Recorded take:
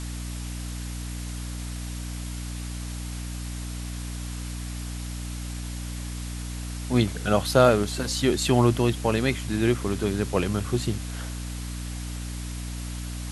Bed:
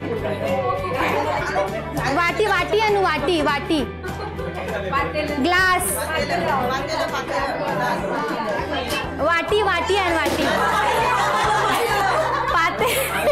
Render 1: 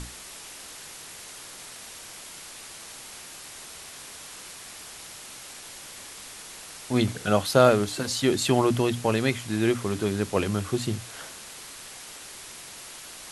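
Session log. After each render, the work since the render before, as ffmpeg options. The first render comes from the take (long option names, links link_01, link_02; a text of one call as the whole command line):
ffmpeg -i in.wav -af "bandreject=frequency=60:width_type=h:width=6,bandreject=frequency=120:width_type=h:width=6,bandreject=frequency=180:width_type=h:width=6,bandreject=frequency=240:width_type=h:width=6,bandreject=frequency=300:width_type=h:width=6" out.wav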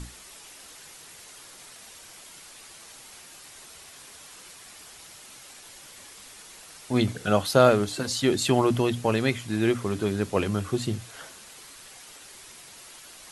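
ffmpeg -i in.wav -af "afftdn=noise_reduction=6:noise_floor=-43" out.wav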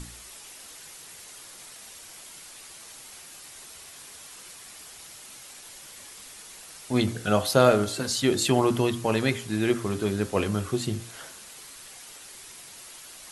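ffmpeg -i in.wav -af "highshelf=frequency=7900:gain=4.5,bandreject=frequency=57.47:width_type=h:width=4,bandreject=frequency=114.94:width_type=h:width=4,bandreject=frequency=172.41:width_type=h:width=4,bandreject=frequency=229.88:width_type=h:width=4,bandreject=frequency=287.35:width_type=h:width=4,bandreject=frequency=344.82:width_type=h:width=4,bandreject=frequency=402.29:width_type=h:width=4,bandreject=frequency=459.76:width_type=h:width=4,bandreject=frequency=517.23:width_type=h:width=4,bandreject=frequency=574.7:width_type=h:width=4,bandreject=frequency=632.17:width_type=h:width=4,bandreject=frequency=689.64:width_type=h:width=4,bandreject=frequency=747.11:width_type=h:width=4,bandreject=frequency=804.58:width_type=h:width=4,bandreject=frequency=862.05:width_type=h:width=4,bandreject=frequency=919.52:width_type=h:width=4,bandreject=frequency=976.99:width_type=h:width=4,bandreject=frequency=1034.46:width_type=h:width=4,bandreject=frequency=1091.93:width_type=h:width=4,bandreject=frequency=1149.4:width_type=h:width=4,bandreject=frequency=1206.87:width_type=h:width=4,bandreject=frequency=1264.34:width_type=h:width=4,bandreject=frequency=1321.81:width_type=h:width=4,bandreject=frequency=1379.28:width_type=h:width=4,bandreject=frequency=1436.75:width_type=h:width=4,bandreject=frequency=1494.22:width_type=h:width=4,bandreject=frequency=1551.69:width_type=h:width=4,bandreject=frequency=1609.16:width_type=h:width=4,bandreject=frequency=1666.63:width_type=h:width=4,bandreject=frequency=1724.1:width_type=h:width=4,bandreject=frequency=1781.57:width_type=h:width=4" out.wav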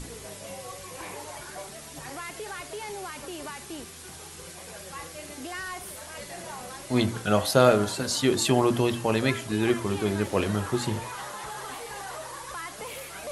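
ffmpeg -i in.wav -i bed.wav -filter_complex "[1:a]volume=-19.5dB[link_01];[0:a][link_01]amix=inputs=2:normalize=0" out.wav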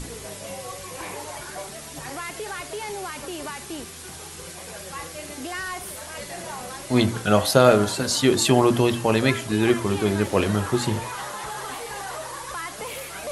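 ffmpeg -i in.wav -af "volume=4.5dB,alimiter=limit=-2dB:level=0:latency=1" out.wav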